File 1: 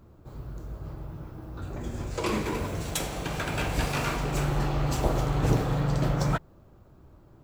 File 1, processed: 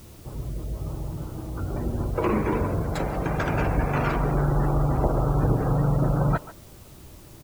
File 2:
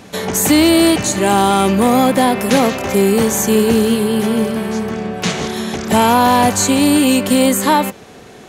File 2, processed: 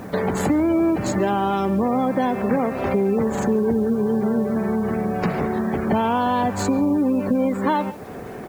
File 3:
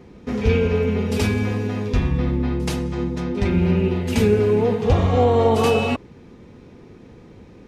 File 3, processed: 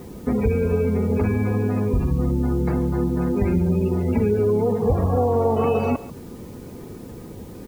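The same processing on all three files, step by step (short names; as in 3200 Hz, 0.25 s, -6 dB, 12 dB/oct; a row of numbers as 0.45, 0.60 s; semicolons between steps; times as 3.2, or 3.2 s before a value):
median filter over 15 samples; spectral gate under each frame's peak -30 dB strong; compressor 4:1, threshold -25 dBFS; requantised 10-bit, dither triangular; speakerphone echo 0.14 s, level -15 dB; normalise peaks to -9 dBFS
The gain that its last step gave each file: +7.0, +5.5, +7.0 dB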